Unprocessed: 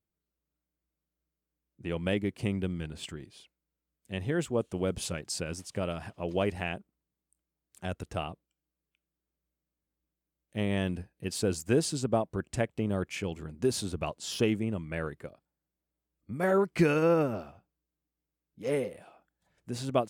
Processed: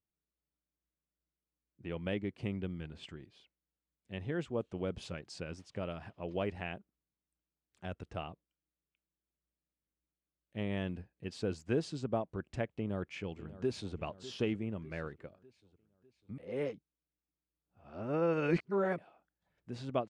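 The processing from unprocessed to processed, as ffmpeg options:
-filter_complex "[0:a]asplit=2[a][b];[b]afade=t=in:st=12.76:d=0.01,afade=t=out:st=13.96:d=0.01,aecho=0:1:600|1200|1800|2400|3000:0.16788|0.0839402|0.0419701|0.0209851|0.0104925[c];[a][c]amix=inputs=2:normalize=0,asplit=3[d][e][f];[d]atrim=end=16.382[g];[e]atrim=start=16.378:end=18.982,asetpts=PTS-STARTPTS,areverse[h];[f]atrim=start=18.978[i];[g][h]acrossfade=d=0.004:c1=hsin:c2=hsin[j];[j][i]acrossfade=d=0.004:c1=hsin:c2=hsin,lowpass=4k,volume=-6.5dB"

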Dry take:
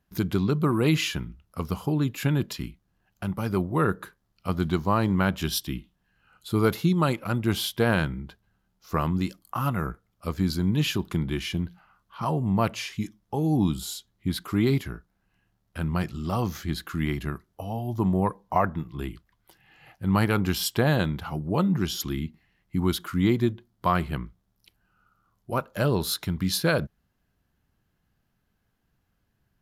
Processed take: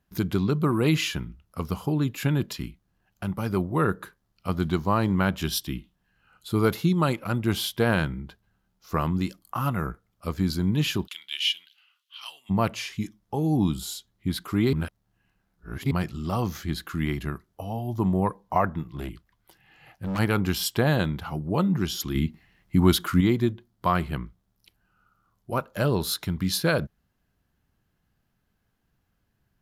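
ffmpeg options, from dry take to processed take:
-filter_complex "[0:a]asplit=3[a][b][c];[a]afade=t=out:st=11.06:d=0.02[d];[b]highpass=f=3k:t=q:w=4.3,afade=t=in:st=11.06:d=0.02,afade=t=out:st=12.49:d=0.02[e];[c]afade=t=in:st=12.49:d=0.02[f];[d][e][f]amix=inputs=3:normalize=0,asplit=3[g][h][i];[g]afade=t=out:st=18.88:d=0.02[j];[h]asoftclip=type=hard:threshold=-26.5dB,afade=t=in:st=18.88:d=0.02,afade=t=out:st=20.18:d=0.02[k];[i]afade=t=in:st=20.18:d=0.02[l];[j][k][l]amix=inputs=3:normalize=0,asettb=1/sr,asplit=3[m][n][o];[m]atrim=end=22.154[p];[n]atrim=start=22.15:end=23.21,asetpts=PTS-STARTPTS,afade=t=in:d=0.004:c=qsin,afade=t=out:st=1.056:d=0.004:c=qsin,acontrast=58[q];[o]atrim=start=23.206[r];[p][q]acrossfade=d=0.004:c1=hsin:c2=qsin[s];[s][r]acrossfade=d=0.004:c1=qsin:c2=hsin,asplit=3[t][u][v];[t]atrim=end=14.732[w];[u]atrim=start=14.728:end=15.912,asetpts=PTS-STARTPTS,areverse[x];[v]atrim=start=15.908[y];[w][x]acrossfade=d=0.004:c1=hsin:c2=hsin[z];[z][y]acrossfade=d=0.004:c1=hsin:c2=hsin"

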